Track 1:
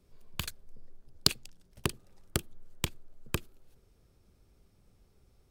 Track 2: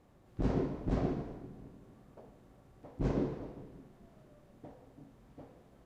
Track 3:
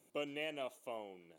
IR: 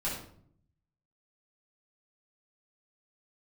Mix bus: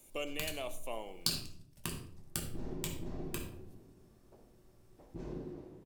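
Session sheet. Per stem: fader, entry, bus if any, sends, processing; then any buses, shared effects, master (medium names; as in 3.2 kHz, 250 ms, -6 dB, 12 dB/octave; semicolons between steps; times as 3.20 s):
-12.0 dB, 0.00 s, bus A, send -4.5 dB, none
-10.0 dB, 2.15 s, bus A, send -12.5 dB, peaking EQ 360 Hz +10 dB 0.27 oct
+1.5 dB, 0.00 s, no bus, send -15 dB, peak limiter -32.5 dBFS, peak gain reduction 5 dB
bus A: 0.0 dB, compression, threshold -45 dBFS, peak gain reduction 15 dB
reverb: on, RT60 0.60 s, pre-delay 5 ms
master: treble shelf 4.1 kHz +10.5 dB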